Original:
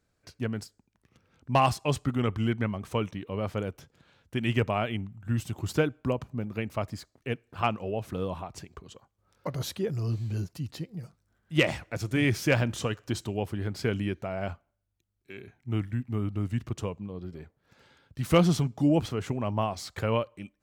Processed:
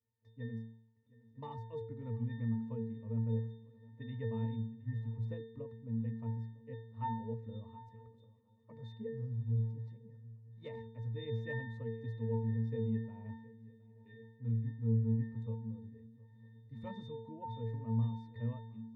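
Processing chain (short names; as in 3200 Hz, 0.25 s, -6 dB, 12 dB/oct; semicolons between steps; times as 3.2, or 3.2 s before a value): octave resonator G#, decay 0.69 s; speed mistake 44.1 kHz file played as 48 kHz; swung echo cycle 0.953 s, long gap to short 3:1, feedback 35%, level -21 dB; gain +5 dB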